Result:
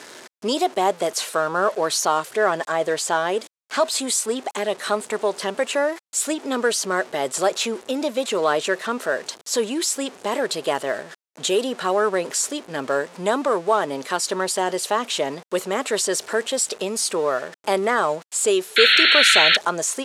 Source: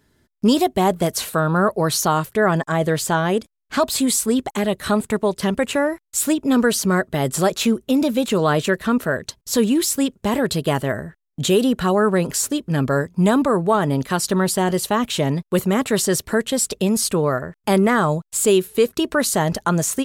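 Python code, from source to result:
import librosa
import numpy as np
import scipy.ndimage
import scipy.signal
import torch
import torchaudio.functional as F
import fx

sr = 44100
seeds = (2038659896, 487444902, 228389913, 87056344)

y = x + 0.5 * 10.0 ** (-30.5 / 20.0) * np.sign(x)
y = scipy.signal.sosfilt(scipy.signal.cheby1(2, 1.0, [480.0, 8100.0], 'bandpass', fs=sr, output='sos'), y)
y = fx.spec_paint(y, sr, seeds[0], shape='noise', start_s=18.76, length_s=0.81, low_hz=1300.0, high_hz=4400.0, level_db=-14.0)
y = F.gain(torch.from_numpy(y), -1.0).numpy()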